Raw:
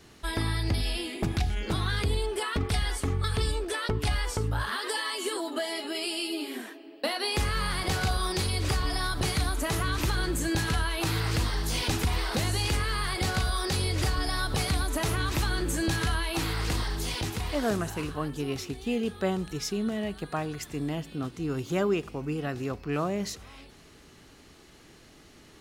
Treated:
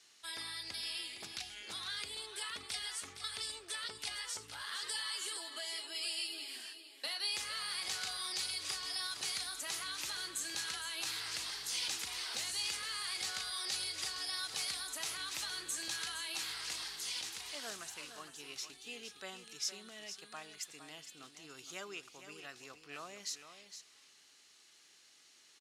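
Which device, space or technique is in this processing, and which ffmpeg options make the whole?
piezo pickup straight into a mixer: -af "lowpass=6900,aderivative,aecho=1:1:462:0.316,volume=1.12"

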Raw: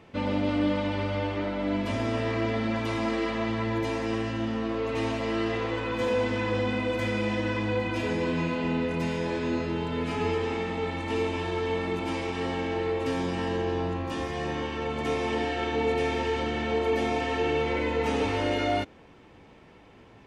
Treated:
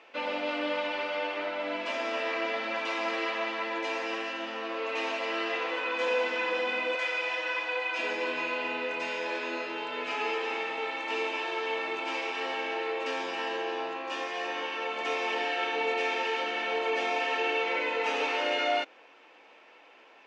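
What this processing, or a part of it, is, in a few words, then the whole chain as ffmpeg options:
phone speaker on a table: -filter_complex "[0:a]asettb=1/sr,asplit=3[s0][s1][s2];[s0]atrim=end=6.954[s3];[s1]atrim=start=6.95:end=7.99,asetpts=PTS-STARTPTS,afade=t=in:d=0.004:c=qsin,afade=t=out:st=1.036:d=0.004:c=qsin,highpass=550[s4];[s2]atrim=start=7.986[s5];[s3][s4]acrossfade=d=0.004:c1=hsin:c2=qsin[s6];[s6][s5]acrossfade=d=0.004:c1=qsin:c2=hsin,highpass=f=390:w=0.5412,highpass=f=390:w=1.3066,equalizer=f=400:t=q:w=4:g=-7,equalizer=f=1500:t=q:w=4:g=3,equalizer=f=2600:t=q:w=4:g=7,lowpass=f=6800:w=0.5412,lowpass=f=6800:w=1.3066"

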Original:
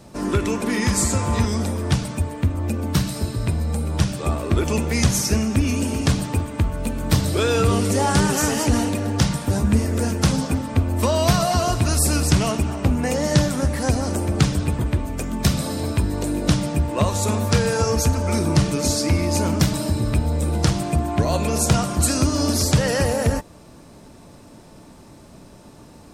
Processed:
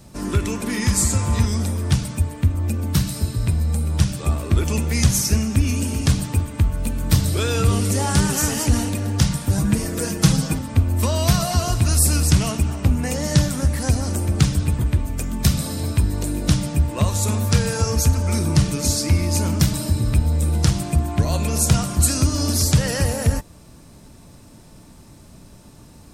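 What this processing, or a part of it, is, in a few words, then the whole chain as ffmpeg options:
smiley-face EQ: -filter_complex "[0:a]asettb=1/sr,asplit=3[s0][s1][s2];[s0]atrim=end=9.574[s3];[s1]atrim=start=9.57:end=10.59,asetpts=PTS-STARTPTS,afade=t=in:d=0.004:c=qsin,afade=t=out:st=1.016:d=0.004:c=qsin,aecho=1:1:6.2:0.87,atrim=end_sample=44982[s4];[s2]atrim=start=10.586[s5];[s3][s4]acrossfade=d=0.004:c1=hsin:c2=qsin[s6];[s6][s5]acrossfade=d=0.004:c1=qsin:c2=hsin,lowshelf=f=200:g=5.5,equalizer=f=500:t=o:w=2.7:g=-5,highshelf=f=8300:g=7,volume=0.891"

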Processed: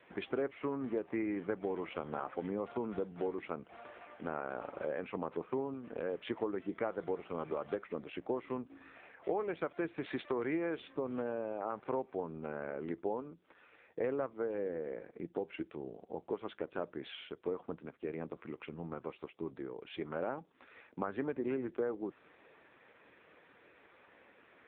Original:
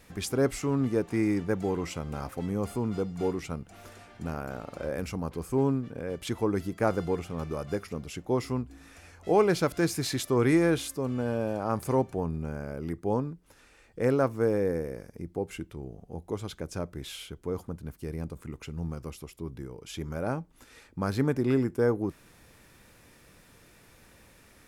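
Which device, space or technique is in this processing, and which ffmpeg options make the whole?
voicemail: -filter_complex "[0:a]asplit=3[s0][s1][s2];[s0]afade=t=out:st=14.17:d=0.02[s3];[s1]adynamicequalizer=threshold=0.00562:dfrequency=160:dqfactor=2.1:tfrequency=160:tqfactor=2.1:attack=5:release=100:ratio=0.375:range=1.5:mode=boostabove:tftype=bell,afade=t=in:st=14.17:d=0.02,afade=t=out:st=15.52:d=0.02[s4];[s2]afade=t=in:st=15.52:d=0.02[s5];[s3][s4][s5]amix=inputs=3:normalize=0,highpass=340,lowpass=2800,acompressor=threshold=0.0178:ratio=6,volume=1.41" -ar 8000 -c:a libopencore_amrnb -b:a 5900

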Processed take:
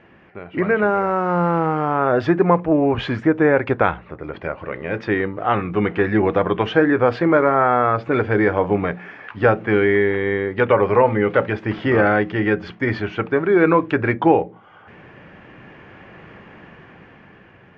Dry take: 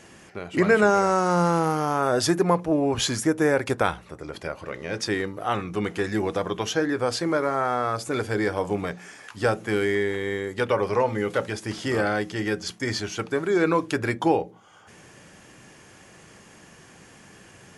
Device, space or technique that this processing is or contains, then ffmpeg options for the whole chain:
action camera in a waterproof case: -filter_complex "[0:a]asettb=1/sr,asplit=3[s0][s1][s2];[s0]atrim=end=7.504[s3];[s1]atrim=start=7.5:end=8.1,asetpts=PTS-STARTPTS,afade=t=in:d=0.004:c=qsin,afade=t=out:st=0.596:d=0.004:c=qsin,lowpass=6000[s4];[s2]atrim=start=8.096[s5];[s3][s4]acrossfade=d=0.004:c1=hsin:c2=qsin[s6];[s6][s5]acrossfade=d=0.004:c1=qsin:c2=hsin,lowpass=f=2600:w=0.5412,lowpass=f=2600:w=1.3066,dynaudnorm=f=370:g=9:m=3.76" -ar 22050 -c:a aac -b:a 96k

